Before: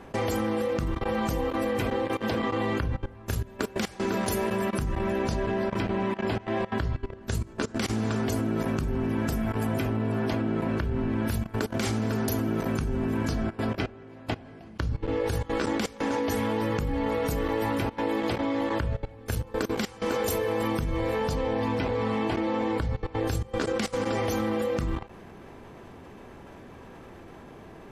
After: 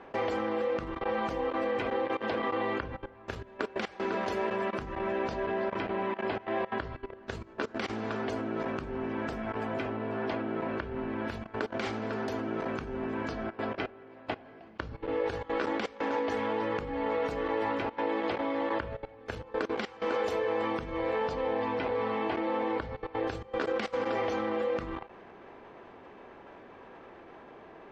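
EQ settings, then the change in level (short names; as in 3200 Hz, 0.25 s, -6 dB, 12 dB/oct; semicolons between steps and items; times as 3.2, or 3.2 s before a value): air absorption 160 m; tone controls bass -15 dB, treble -5 dB; 0.0 dB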